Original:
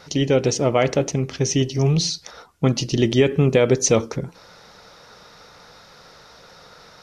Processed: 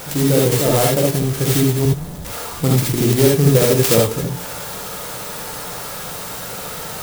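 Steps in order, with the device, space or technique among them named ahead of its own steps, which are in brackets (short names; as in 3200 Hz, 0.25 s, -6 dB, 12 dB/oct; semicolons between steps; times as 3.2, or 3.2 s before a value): 1.85–2.25 inverse Chebyshev band-stop 290–8200 Hz, stop band 60 dB; early CD player with a faulty converter (zero-crossing step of -27 dBFS; clock jitter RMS 0.11 ms); non-linear reverb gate 0.1 s rising, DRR -2.5 dB; gain -1.5 dB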